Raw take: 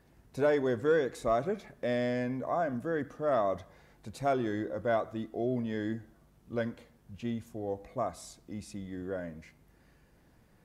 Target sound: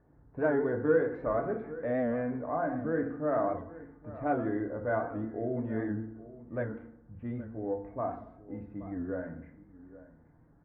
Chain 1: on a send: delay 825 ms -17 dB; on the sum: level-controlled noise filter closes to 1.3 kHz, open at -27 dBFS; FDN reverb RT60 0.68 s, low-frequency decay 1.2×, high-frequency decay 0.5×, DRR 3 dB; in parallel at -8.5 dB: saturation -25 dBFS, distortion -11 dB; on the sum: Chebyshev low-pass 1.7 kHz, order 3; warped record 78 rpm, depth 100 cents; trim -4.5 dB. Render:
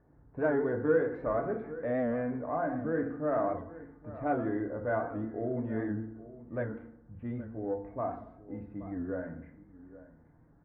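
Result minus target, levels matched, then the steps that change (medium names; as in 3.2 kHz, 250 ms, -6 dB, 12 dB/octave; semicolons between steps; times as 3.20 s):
saturation: distortion +8 dB
change: saturation -17.5 dBFS, distortion -19 dB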